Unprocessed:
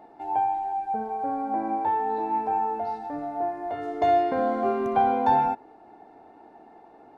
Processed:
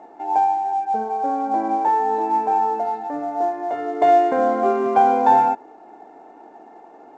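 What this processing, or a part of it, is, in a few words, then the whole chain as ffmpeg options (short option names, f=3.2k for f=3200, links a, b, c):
telephone: -af "highpass=250,lowpass=3.5k,aemphasis=mode=reproduction:type=cd,volume=6.5dB" -ar 16000 -c:a pcm_mulaw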